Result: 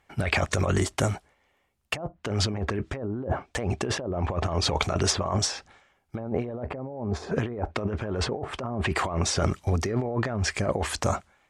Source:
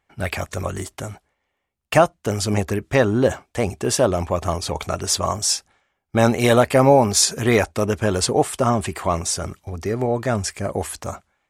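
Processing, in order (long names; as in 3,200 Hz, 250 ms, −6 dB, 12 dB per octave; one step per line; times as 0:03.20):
treble cut that deepens with the level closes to 670 Hz, closed at −13 dBFS
compressor whose output falls as the input rises −28 dBFS, ratio −1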